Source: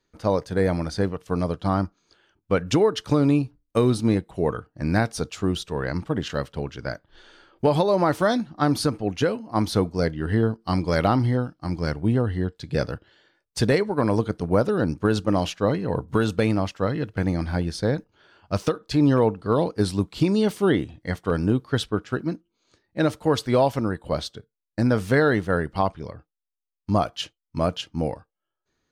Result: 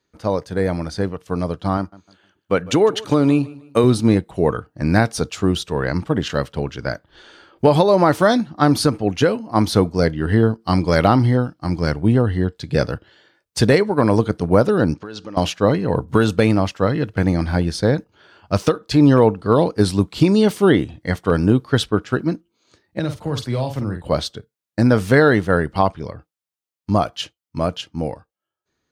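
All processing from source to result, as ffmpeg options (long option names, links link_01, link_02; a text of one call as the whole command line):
ffmpeg -i in.wav -filter_complex "[0:a]asettb=1/sr,asplit=3[link_01][link_02][link_03];[link_01]atrim=end=1.774[link_04];[link_02]atrim=start=1.77:end=3.84,asetpts=PTS-STARTPTS,afade=type=in:duration=0.004:curve=qsin,afade=type=out:start_time=2.066:duration=0.004:curve=qsin,highpass=frequency=170:poles=1,bandreject=frequency=5200:width=9,aecho=1:1:153|306|459:0.0944|0.0312|0.0103,atrim=end_sample=91287[link_05];[link_03]atrim=start=3.836[link_06];[link_04][link_05]acrossfade=duration=0.004:curve1=hsin:curve2=qsin[link_07];[link_07][link_06]acrossfade=duration=0.004:curve1=qsin:curve2=hsin,asettb=1/sr,asplit=3[link_08][link_09][link_10];[link_08]atrim=end=14.944[link_11];[link_09]atrim=start=14.94:end=15.37,asetpts=PTS-STARTPTS,afade=type=in:duration=0.004:curve=qsin,afade=type=out:start_time=0.426:duration=0.004:curve=qsin,acompressor=threshold=-31dB:ratio=10:attack=3.2:release=140:knee=1:detection=peak,lowpass=frequency=5500:width=0.5412,lowpass=frequency=5500:width=1.3066,aemphasis=mode=production:type=bsi[link_12];[link_10]atrim=start=15.366[link_13];[link_11][link_12]acrossfade=duration=0.004:curve1=hsin:curve2=qsin[link_14];[link_14][link_13]acrossfade=duration=0.004:curve1=qsin:curve2=hsin,asettb=1/sr,asplit=3[link_15][link_16][link_17];[link_15]atrim=end=22.994[link_18];[link_16]atrim=start=22.99:end=24.02,asetpts=PTS-STARTPTS,afade=type=in:duration=0.004:curve=qsin,afade=type=out:start_time=1.026:duration=0.004:curve=qsin,highshelf=frequency=3000:gain=-9,acrossover=split=160|3000[link_19][link_20][link_21];[link_20]acompressor=threshold=-40dB:ratio=2:attack=3.2:release=140:knee=2.83:detection=peak[link_22];[link_19][link_22][link_21]amix=inputs=3:normalize=0,asplit=2[link_23][link_24];[link_24]adelay=47,volume=-7dB[link_25];[link_23][link_25]amix=inputs=2:normalize=0,atrim=end_sample=45423[link_26];[link_17]atrim=start=24.016[link_27];[link_18][link_26]acrossfade=duration=0.004:curve1=hsin:curve2=qsin[link_28];[link_28][link_27]acrossfade=duration=0.004:curve1=qsin:curve2=hsin,highpass=47,dynaudnorm=framelen=280:gausssize=17:maxgain=6dB,volume=1.5dB" out.wav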